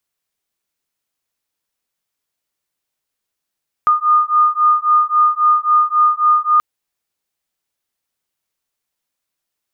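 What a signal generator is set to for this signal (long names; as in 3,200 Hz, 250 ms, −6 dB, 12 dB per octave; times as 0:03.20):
two tones that beat 1,220 Hz, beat 3.7 Hz, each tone −13.5 dBFS 2.73 s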